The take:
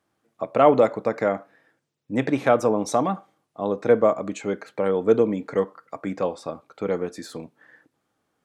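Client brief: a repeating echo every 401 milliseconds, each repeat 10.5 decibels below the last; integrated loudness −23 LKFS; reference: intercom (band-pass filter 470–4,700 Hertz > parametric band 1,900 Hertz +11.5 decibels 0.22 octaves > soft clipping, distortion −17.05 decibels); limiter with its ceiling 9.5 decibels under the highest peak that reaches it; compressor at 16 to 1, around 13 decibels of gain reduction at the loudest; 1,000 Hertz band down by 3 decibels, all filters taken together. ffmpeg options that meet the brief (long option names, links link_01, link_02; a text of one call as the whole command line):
ffmpeg -i in.wav -af "equalizer=frequency=1000:width_type=o:gain=-4,acompressor=threshold=-25dB:ratio=16,alimiter=limit=-23dB:level=0:latency=1,highpass=470,lowpass=4700,equalizer=frequency=1900:width_type=o:width=0.22:gain=11.5,aecho=1:1:401|802|1203:0.299|0.0896|0.0269,asoftclip=threshold=-29dB,volume=17dB" out.wav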